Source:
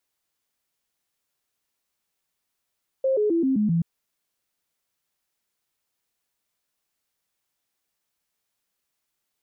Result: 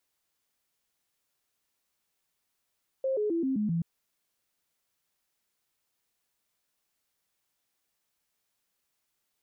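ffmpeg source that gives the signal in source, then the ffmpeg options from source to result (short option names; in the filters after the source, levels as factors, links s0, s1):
-f lavfi -i "aevalsrc='0.119*clip(min(mod(t,0.13),0.13-mod(t,0.13))/0.005,0,1)*sin(2*PI*531*pow(2,-floor(t/0.13)/3)*mod(t,0.13))':d=0.78:s=44100"
-af "alimiter=level_in=1.19:limit=0.0631:level=0:latency=1:release=15,volume=0.841"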